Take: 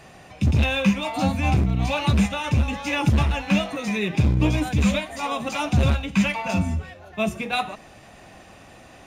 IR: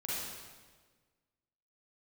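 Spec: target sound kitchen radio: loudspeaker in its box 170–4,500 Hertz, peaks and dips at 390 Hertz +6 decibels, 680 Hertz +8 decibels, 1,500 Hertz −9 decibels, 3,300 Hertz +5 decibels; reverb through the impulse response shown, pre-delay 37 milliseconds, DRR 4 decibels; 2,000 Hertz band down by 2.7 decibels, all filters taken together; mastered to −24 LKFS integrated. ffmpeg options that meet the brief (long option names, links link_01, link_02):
-filter_complex "[0:a]equalizer=frequency=2000:width_type=o:gain=-3.5,asplit=2[link_01][link_02];[1:a]atrim=start_sample=2205,adelay=37[link_03];[link_02][link_03]afir=irnorm=-1:irlink=0,volume=-7.5dB[link_04];[link_01][link_04]amix=inputs=2:normalize=0,highpass=170,equalizer=frequency=390:width_type=q:width=4:gain=6,equalizer=frequency=680:width_type=q:width=4:gain=8,equalizer=frequency=1500:width_type=q:width=4:gain=-9,equalizer=frequency=3300:width_type=q:width=4:gain=5,lowpass=frequency=4500:width=0.5412,lowpass=frequency=4500:width=1.3066,volume=-1dB"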